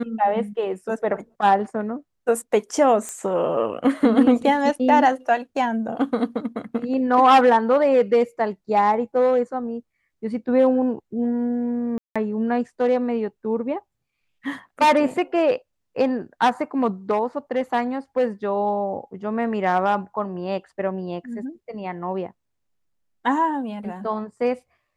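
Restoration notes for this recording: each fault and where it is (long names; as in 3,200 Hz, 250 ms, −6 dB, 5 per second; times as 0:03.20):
0:03.09: click −17 dBFS
0:11.98–0:12.16: drop-out 176 ms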